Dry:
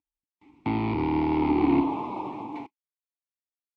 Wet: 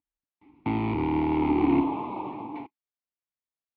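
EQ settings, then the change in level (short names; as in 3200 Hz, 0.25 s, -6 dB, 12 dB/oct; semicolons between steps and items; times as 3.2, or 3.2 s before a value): dynamic EQ 3100 Hz, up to +4 dB, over -48 dBFS, Q 1; air absorption 280 m; 0.0 dB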